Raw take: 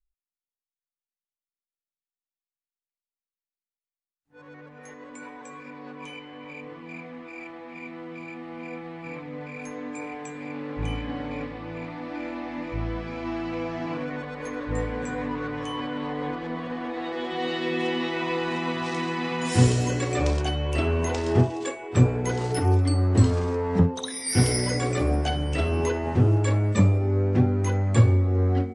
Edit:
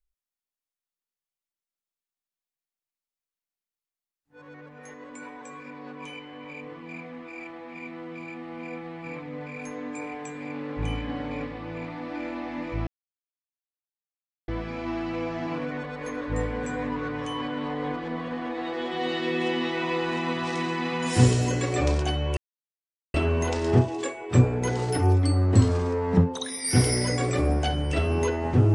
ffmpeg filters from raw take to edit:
-filter_complex "[0:a]asplit=3[s0][s1][s2];[s0]atrim=end=12.87,asetpts=PTS-STARTPTS,afade=t=out:st=12.866:d=0.004:c=hsin,apad=pad_dur=1.61[s3];[s1]atrim=start=12.87:end=20.76,asetpts=PTS-STARTPTS,afade=t=in:d=0.004:c=hsin,afade=t=out:st=7.886:d=0.004:c=hsin,apad=pad_dur=0.77[s4];[s2]atrim=start=20.76,asetpts=PTS-STARTPTS,afade=t=in:d=0.004:c=hsin[s5];[s3][s4][s5]concat=n=3:v=0:a=1"

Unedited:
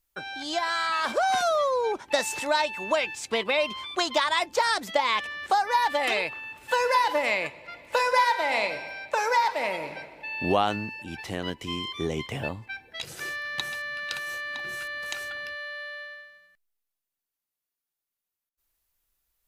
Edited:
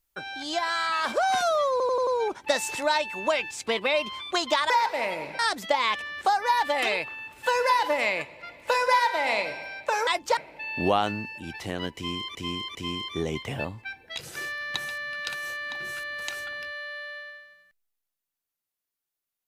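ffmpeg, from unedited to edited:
-filter_complex "[0:a]asplit=11[s0][s1][s2][s3][s4][s5][s6][s7][s8][s9][s10];[s0]atrim=end=1.802[s11];[s1]atrim=start=1.708:end=1.802[s12];[s2]atrim=start=1.708:end=1.802[s13];[s3]atrim=start=1.708:end=1.802[s14];[s4]atrim=start=1.708:end=4.342[s15];[s5]atrim=start=9.318:end=10.012[s16];[s6]atrim=start=4.638:end=9.322[s17];[s7]atrim=start=4.338:end=4.642[s18];[s8]atrim=start=10.008:end=11.992[s19];[s9]atrim=start=11.588:end=11.992[s20];[s10]atrim=start=11.588[s21];[s11][s12]acrossfade=d=0.004:c1=hsin:c2=hsin[s22];[s22][s13]acrossfade=d=0.004:c1=hsin:c2=hsin[s23];[s23][s14]acrossfade=d=0.004:c1=hsin:c2=hsin[s24];[s24][s15]acrossfade=d=0.004:c1=hsin:c2=hsin[s25];[s25][s16]acrossfade=d=0.004:c1=hsin:c2=hsin[s26];[s26][s17]acrossfade=d=0.004:c1=hsin:c2=hsin[s27];[s27][s18]acrossfade=d=0.004:c1=hsin:c2=hsin[s28];[s28][s19]acrossfade=d=0.004:c1=hsin:c2=hsin[s29];[s29][s20]acrossfade=d=0.004:c1=hsin:c2=hsin[s30];[s30][s21]acrossfade=d=0.004:c1=hsin:c2=hsin"

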